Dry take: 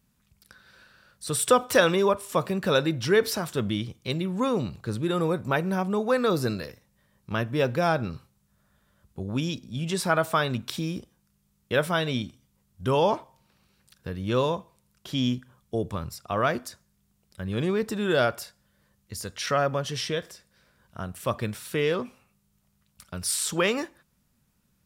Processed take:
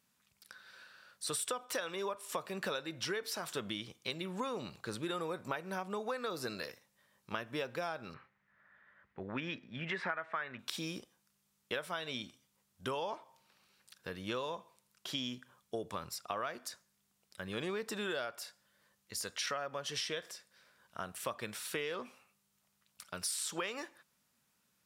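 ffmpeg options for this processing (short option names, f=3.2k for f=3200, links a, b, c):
-filter_complex "[0:a]asettb=1/sr,asplit=3[a][b][c];[a]atrim=end=8.144[d];[b]atrim=start=8.14:end=10.59,asetpts=PTS-STARTPTS,afade=t=in:d=0.004:c=qsin,afade=t=out:st=2.446:d=0.004:c=qsin,lowpass=f=1.9k:t=q:w=4.5[e];[c]atrim=start=10.586[f];[d][e]acrossfade=d=0.004:c1=hsin:c2=qsin[g];[g][f]acrossfade=d=0.004:c1=qsin:c2=hsin,highpass=f=760:p=1,highshelf=f=12k:g=-5.5,acompressor=threshold=-34dB:ratio=16"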